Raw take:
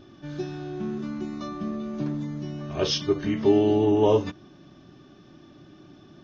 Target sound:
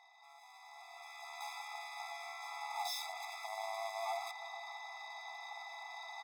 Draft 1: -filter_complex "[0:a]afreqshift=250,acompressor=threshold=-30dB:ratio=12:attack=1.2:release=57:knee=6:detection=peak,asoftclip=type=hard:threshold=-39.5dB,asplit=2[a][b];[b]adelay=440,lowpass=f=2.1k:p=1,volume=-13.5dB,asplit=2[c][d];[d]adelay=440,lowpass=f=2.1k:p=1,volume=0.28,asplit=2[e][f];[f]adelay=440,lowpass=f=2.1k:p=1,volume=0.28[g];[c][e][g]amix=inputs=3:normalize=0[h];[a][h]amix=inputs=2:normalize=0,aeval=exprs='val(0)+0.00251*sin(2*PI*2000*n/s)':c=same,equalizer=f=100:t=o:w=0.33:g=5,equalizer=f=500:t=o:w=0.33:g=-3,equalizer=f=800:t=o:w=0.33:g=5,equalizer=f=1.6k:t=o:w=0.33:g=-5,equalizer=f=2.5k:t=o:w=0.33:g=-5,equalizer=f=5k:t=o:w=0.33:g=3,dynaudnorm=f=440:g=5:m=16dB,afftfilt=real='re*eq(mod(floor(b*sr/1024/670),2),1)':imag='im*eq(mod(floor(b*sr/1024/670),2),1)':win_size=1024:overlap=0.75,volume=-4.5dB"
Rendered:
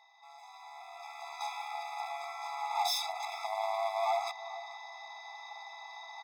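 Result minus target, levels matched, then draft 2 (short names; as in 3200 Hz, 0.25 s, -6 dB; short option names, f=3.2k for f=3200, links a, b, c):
hard clip: distortion -4 dB
-filter_complex "[0:a]afreqshift=250,acompressor=threshold=-30dB:ratio=12:attack=1.2:release=57:knee=6:detection=peak,asoftclip=type=hard:threshold=-49dB,asplit=2[a][b];[b]adelay=440,lowpass=f=2.1k:p=1,volume=-13.5dB,asplit=2[c][d];[d]adelay=440,lowpass=f=2.1k:p=1,volume=0.28,asplit=2[e][f];[f]adelay=440,lowpass=f=2.1k:p=1,volume=0.28[g];[c][e][g]amix=inputs=3:normalize=0[h];[a][h]amix=inputs=2:normalize=0,aeval=exprs='val(0)+0.00251*sin(2*PI*2000*n/s)':c=same,equalizer=f=100:t=o:w=0.33:g=5,equalizer=f=500:t=o:w=0.33:g=-3,equalizer=f=800:t=o:w=0.33:g=5,equalizer=f=1.6k:t=o:w=0.33:g=-5,equalizer=f=2.5k:t=o:w=0.33:g=-5,equalizer=f=5k:t=o:w=0.33:g=3,dynaudnorm=f=440:g=5:m=16dB,afftfilt=real='re*eq(mod(floor(b*sr/1024/670),2),1)':imag='im*eq(mod(floor(b*sr/1024/670),2),1)':win_size=1024:overlap=0.75,volume=-4.5dB"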